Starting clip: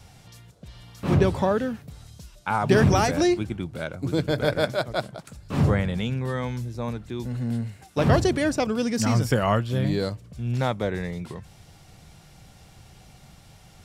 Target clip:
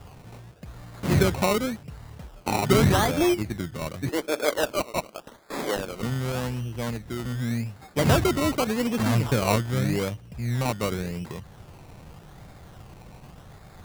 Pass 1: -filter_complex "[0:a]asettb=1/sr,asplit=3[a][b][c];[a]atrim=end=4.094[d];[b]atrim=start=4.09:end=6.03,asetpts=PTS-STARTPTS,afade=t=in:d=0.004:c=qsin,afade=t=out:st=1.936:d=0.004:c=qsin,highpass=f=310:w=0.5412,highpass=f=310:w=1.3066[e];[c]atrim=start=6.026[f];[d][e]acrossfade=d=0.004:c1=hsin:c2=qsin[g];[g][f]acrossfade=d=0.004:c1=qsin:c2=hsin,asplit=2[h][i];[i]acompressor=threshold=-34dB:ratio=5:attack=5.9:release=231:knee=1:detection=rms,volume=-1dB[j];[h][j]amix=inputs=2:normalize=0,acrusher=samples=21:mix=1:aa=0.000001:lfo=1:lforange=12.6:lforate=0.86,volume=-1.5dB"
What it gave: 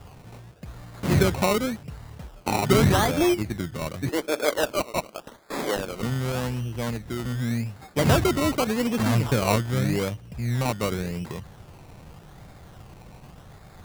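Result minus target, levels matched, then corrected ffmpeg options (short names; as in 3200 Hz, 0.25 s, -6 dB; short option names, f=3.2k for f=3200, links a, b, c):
compressor: peak gain reduction -6.5 dB
-filter_complex "[0:a]asettb=1/sr,asplit=3[a][b][c];[a]atrim=end=4.094[d];[b]atrim=start=4.09:end=6.03,asetpts=PTS-STARTPTS,afade=t=in:d=0.004:c=qsin,afade=t=out:st=1.936:d=0.004:c=qsin,highpass=f=310:w=0.5412,highpass=f=310:w=1.3066[e];[c]atrim=start=6.026[f];[d][e]acrossfade=d=0.004:c1=hsin:c2=qsin[g];[g][f]acrossfade=d=0.004:c1=qsin:c2=hsin,asplit=2[h][i];[i]acompressor=threshold=-42dB:ratio=5:attack=5.9:release=231:knee=1:detection=rms,volume=-1dB[j];[h][j]amix=inputs=2:normalize=0,acrusher=samples=21:mix=1:aa=0.000001:lfo=1:lforange=12.6:lforate=0.86,volume=-1.5dB"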